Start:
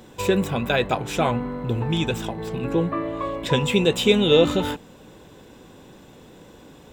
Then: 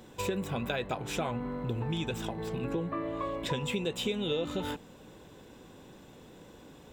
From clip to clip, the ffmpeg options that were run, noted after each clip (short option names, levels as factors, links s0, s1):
-af "acompressor=threshold=0.0631:ratio=5,volume=0.531"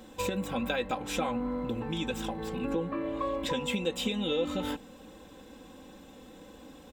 -af "aecho=1:1:3.8:0.71"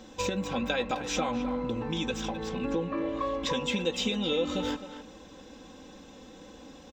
-filter_complex "[0:a]highshelf=f=7900:t=q:w=3:g=-10,asplit=2[s0][s1];[s1]adelay=260,highpass=300,lowpass=3400,asoftclip=type=hard:threshold=0.0562,volume=0.316[s2];[s0][s2]amix=inputs=2:normalize=0,volume=1.12"